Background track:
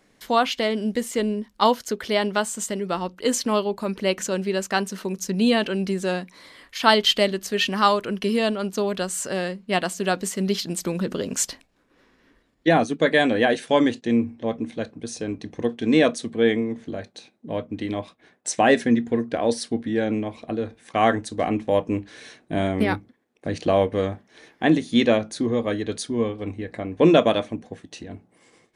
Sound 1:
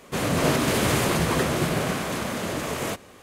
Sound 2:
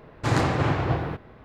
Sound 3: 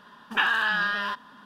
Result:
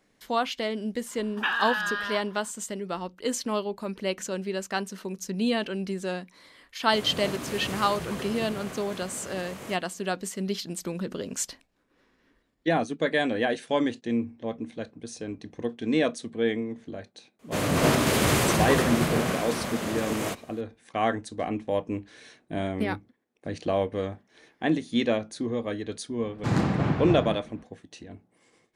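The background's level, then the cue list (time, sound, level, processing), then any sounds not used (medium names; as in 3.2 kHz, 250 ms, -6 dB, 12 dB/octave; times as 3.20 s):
background track -6.5 dB
1.06 s: add 3 -4 dB
6.80 s: add 1 -13 dB
17.39 s: add 1 -0.5 dB + three bands expanded up and down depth 40%
26.20 s: add 2 -6.5 dB + peaking EQ 200 Hz +14 dB 0.8 oct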